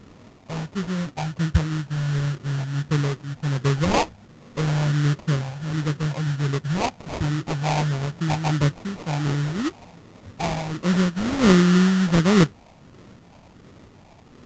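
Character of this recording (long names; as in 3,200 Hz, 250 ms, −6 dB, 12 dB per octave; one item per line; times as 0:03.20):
phaser sweep stages 12, 1.4 Hz, lowest notch 390–1,100 Hz
aliases and images of a low sample rate 1,600 Hz, jitter 20%
mu-law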